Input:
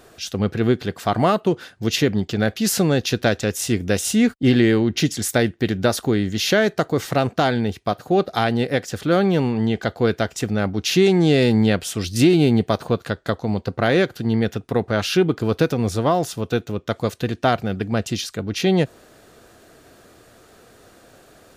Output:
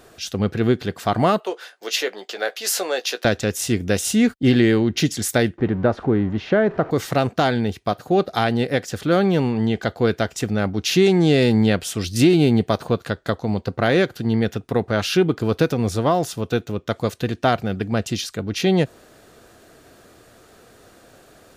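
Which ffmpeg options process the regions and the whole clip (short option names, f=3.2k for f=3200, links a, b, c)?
-filter_complex "[0:a]asettb=1/sr,asplit=3[a][b][c];[a]atrim=end=1.404[d];[b]atrim=start=1.4:end=3.25,asetpts=PTS-STARTPTS,afade=t=in:d=0.004:c=qsin,afade=t=out:st=1.846:d=0.004:c=qsin,highpass=f=470:w=0.5412,highpass=f=470:w=1.3066,asplit=2[e][f];[f]adelay=16,volume=-10dB[g];[e][g]amix=inputs=2:normalize=0,atrim=end_sample=81585[h];[c]atrim=start=3.246[i];[d][h]acrossfade=d=0.004:c1=hsin:c2=qsin[j];[j][i]acrossfade=d=0.004:c1=qsin:c2=hsin,asettb=1/sr,asplit=3[k][l][m];[k]atrim=end=5.584[n];[l]atrim=start=5.58:end=6.91,asetpts=PTS-STARTPTS,afade=t=in:d=0.004:c=qsin,afade=t=out:st=1.326:d=0.004:c=qsin,aeval=exprs='val(0)+0.5*0.0282*sgn(val(0))':c=same,lowpass=1.4k[o];[m]atrim=start=6.906[p];[n][o]acrossfade=d=0.004:c1=hsin:c2=qsin[q];[q][p]acrossfade=d=0.004:c1=qsin:c2=hsin"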